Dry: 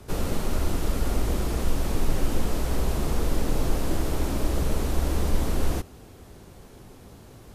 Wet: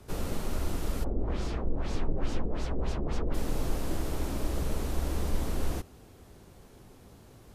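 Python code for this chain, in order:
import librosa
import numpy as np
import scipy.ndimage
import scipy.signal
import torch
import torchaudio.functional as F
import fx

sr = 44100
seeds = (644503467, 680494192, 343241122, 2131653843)

y = fx.filter_lfo_lowpass(x, sr, shape='sine', hz=fx.line((1.03, 1.5), (3.33, 4.8)), low_hz=410.0, high_hz=6300.0, q=1.4, at=(1.03, 3.33), fade=0.02)
y = F.gain(torch.from_numpy(y), -6.0).numpy()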